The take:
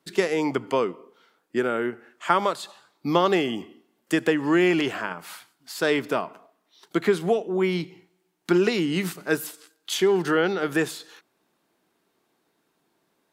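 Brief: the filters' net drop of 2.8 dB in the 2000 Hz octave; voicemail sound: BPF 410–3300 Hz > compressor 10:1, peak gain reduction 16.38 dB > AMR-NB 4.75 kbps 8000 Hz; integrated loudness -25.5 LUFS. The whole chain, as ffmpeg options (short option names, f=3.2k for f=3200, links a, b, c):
-af "highpass=410,lowpass=3.3k,equalizer=f=2k:t=o:g=-3,acompressor=threshold=-32dB:ratio=10,volume=13.5dB" -ar 8000 -c:a libopencore_amrnb -b:a 4750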